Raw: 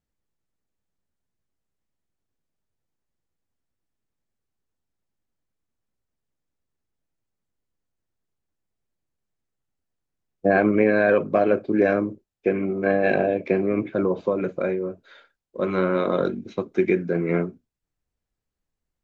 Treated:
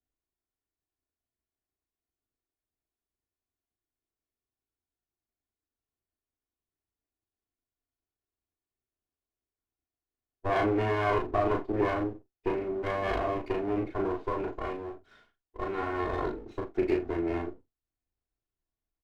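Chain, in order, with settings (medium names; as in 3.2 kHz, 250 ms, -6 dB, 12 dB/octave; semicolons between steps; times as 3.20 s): comb filter that takes the minimum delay 2.8 ms; treble shelf 3.1 kHz -10.5 dB; early reflections 36 ms -3 dB, 80 ms -17.5 dB; trim -7 dB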